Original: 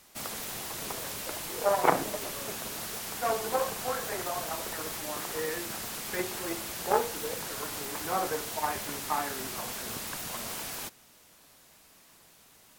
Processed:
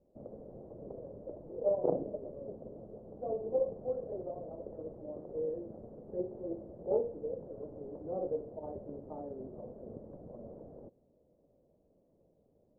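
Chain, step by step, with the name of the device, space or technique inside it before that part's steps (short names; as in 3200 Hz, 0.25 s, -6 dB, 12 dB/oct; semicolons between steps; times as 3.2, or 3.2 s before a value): 2.43–3.73 resonant high shelf 2700 Hz +6.5 dB, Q 3; under water (LPF 500 Hz 24 dB/oct; bell 560 Hz +10.5 dB 0.6 oct); gain -4.5 dB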